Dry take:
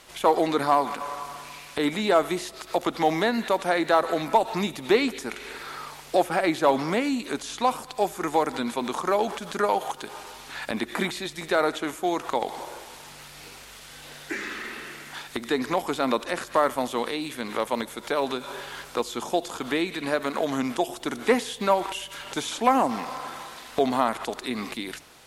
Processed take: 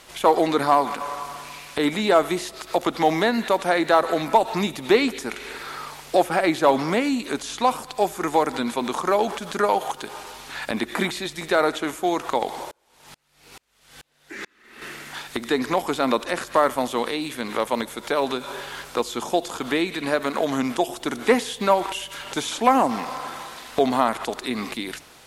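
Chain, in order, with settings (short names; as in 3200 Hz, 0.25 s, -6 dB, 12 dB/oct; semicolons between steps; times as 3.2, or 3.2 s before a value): 12.71–14.82 dB-ramp tremolo swelling 2.3 Hz, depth 37 dB; gain +3 dB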